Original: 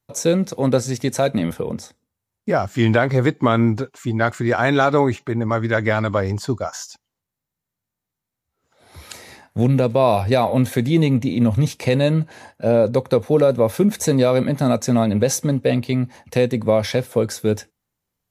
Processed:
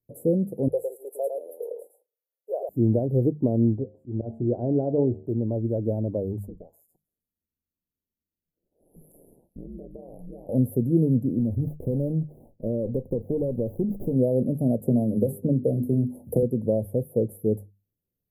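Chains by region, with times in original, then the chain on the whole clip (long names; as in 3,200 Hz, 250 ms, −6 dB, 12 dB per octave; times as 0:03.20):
0:00.68–0:02.69: Butterworth high-pass 450 Hz 48 dB per octave + single-tap delay 108 ms −4.5 dB
0:03.76–0:05.26: low-pass filter 2,800 Hz + hum removal 75.34 Hz, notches 11 + volume swells 110 ms
0:06.46–0:10.49: downward compressor 5 to 1, threshold −30 dBFS + ring modulation 81 Hz + delay with a high-pass on its return 155 ms, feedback 52%, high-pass 2,200 Hz, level −22.5 dB
0:11.39–0:14.16: downward compressor 4 to 1, threshold −16 dBFS + windowed peak hold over 17 samples
0:14.83–0:16.43: parametric band 2,000 Hz −7 dB + mains-hum notches 50/100/150/200/250/300/350/400 Hz + multiband upward and downward compressor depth 100%
whole clip: inverse Chebyshev band-stop filter 1,200–6,200 Hz, stop band 50 dB; mains-hum notches 50/100/150/200 Hz; level −4 dB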